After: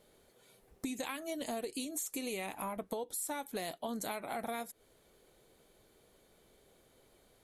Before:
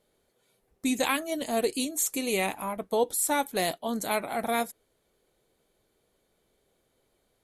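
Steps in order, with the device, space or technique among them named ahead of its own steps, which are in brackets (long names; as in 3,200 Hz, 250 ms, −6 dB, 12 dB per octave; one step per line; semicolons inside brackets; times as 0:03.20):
serial compression, peaks first (downward compressor 10 to 1, threshold −36 dBFS, peak gain reduction 16.5 dB; downward compressor 2 to 1, threshold −46 dBFS, peak gain reduction 7 dB)
level +6 dB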